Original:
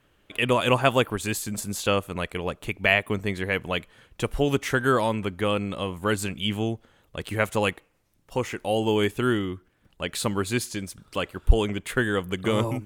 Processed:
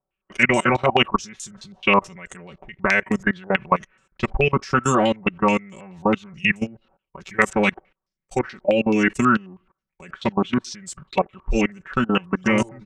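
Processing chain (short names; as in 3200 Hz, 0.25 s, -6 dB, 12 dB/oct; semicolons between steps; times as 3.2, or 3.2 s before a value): gate -52 dBFS, range -17 dB; comb 5.3 ms, depth 87%; level quantiser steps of 23 dB; formant shift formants -3 st; stepped low-pass 9.3 Hz 780–7700 Hz; gain +5 dB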